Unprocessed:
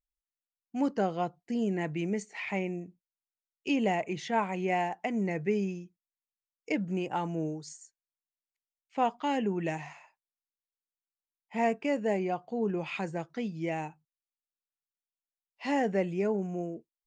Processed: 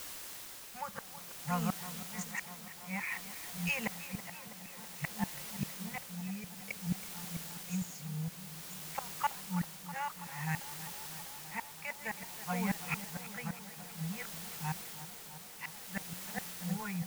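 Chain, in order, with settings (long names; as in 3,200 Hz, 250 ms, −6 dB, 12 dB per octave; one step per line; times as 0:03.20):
delay that plays each chunk backwards 460 ms, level −3.5 dB
Chebyshev band-stop filter 170–570 Hz, order 3
high-shelf EQ 2,200 Hz −4.5 dB
phaser with its sweep stopped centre 1,500 Hz, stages 4
gate with flip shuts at −33 dBFS, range −29 dB
in parallel at −4.5 dB: bit-depth reduction 8 bits, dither triangular
on the sum: amplitude tremolo 0.55 Hz, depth 50%
on a send: tape delay 326 ms, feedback 90%, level −12.5 dB, low-pass 2,400 Hz
on the sum: level +7.5 dB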